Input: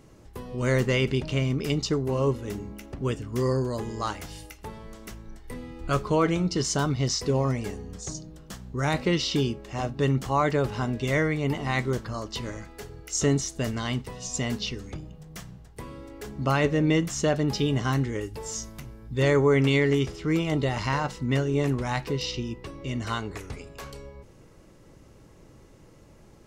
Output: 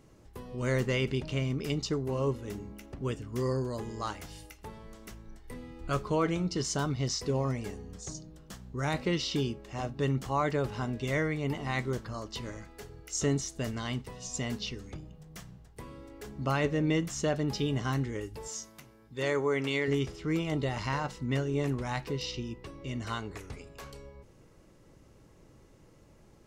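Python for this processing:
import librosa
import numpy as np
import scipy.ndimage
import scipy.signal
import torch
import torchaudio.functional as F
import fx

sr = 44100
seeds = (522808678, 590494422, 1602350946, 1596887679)

y = fx.highpass(x, sr, hz=380.0, slope=6, at=(18.48, 19.88))
y = F.gain(torch.from_numpy(y), -5.5).numpy()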